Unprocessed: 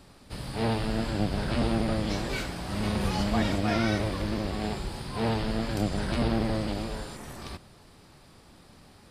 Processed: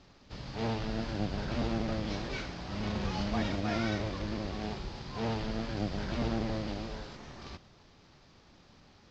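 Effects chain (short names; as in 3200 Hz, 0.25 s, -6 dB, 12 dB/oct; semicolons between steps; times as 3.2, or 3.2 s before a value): CVSD 32 kbps; gain -5.5 dB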